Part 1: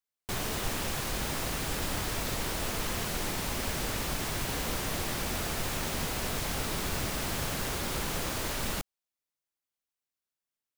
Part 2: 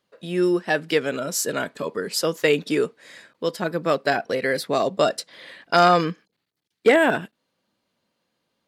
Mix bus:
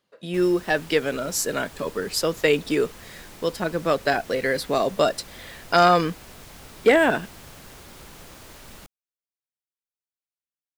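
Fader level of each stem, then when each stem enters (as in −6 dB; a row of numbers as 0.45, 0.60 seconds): −11.5, −0.5 decibels; 0.05, 0.00 seconds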